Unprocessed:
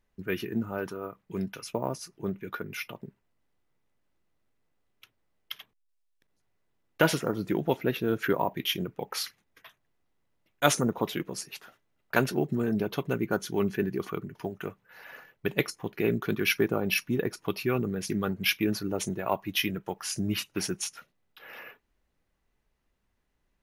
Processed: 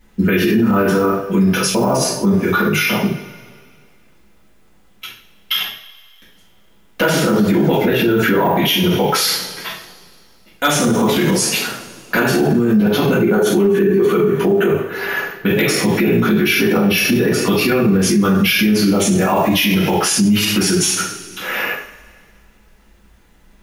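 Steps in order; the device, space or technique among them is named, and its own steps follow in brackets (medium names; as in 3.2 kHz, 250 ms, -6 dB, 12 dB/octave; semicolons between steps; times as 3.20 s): 13.19–14.67 s: graphic EQ with 31 bands 100 Hz -9 dB, 400 Hz +11 dB, 5 kHz -10 dB; two-slope reverb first 0.5 s, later 2.1 s, from -21 dB, DRR -9.5 dB; loud club master (compression 3:1, threshold -18 dBFS, peak gain reduction 10.5 dB; hard clipper -11 dBFS, distortion -32 dB; loudness maximiser +21 dB); trim -6 dB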